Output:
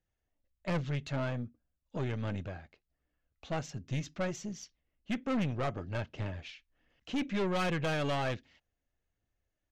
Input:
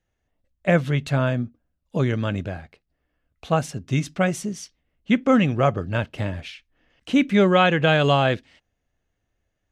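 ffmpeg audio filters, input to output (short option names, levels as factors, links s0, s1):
-af "aphaser=in_gain=1:out_gain=1:delay=3.7:decay=0.27:speed=1.3:type=triangular,aresample=16000,aresample=44100,aeval=exprs='(tanh(8.91*val(0)+0.35)-tanh(0.35))/8.91':c=same,volume=0.355"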